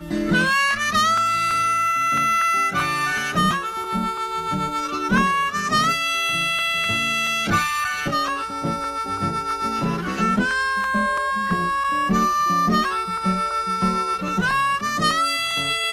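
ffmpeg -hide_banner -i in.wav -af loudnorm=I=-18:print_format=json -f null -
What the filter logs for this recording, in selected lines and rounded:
"input_i" : "-20.6",
"input_tp" : "-8.2",
"input_lra" : "2.2",
"input_thresh" : "-30.6",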